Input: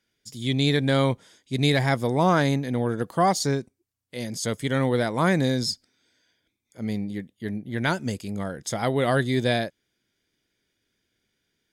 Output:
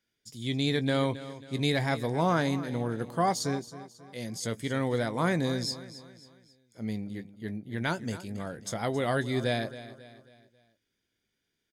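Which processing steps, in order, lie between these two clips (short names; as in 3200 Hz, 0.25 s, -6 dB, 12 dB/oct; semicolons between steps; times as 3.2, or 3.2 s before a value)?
doubler 18 ms -13.5 dB; on a send: feedback echo 0.271 s, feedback 43%, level -15 dB; on the sum: gain -6 dB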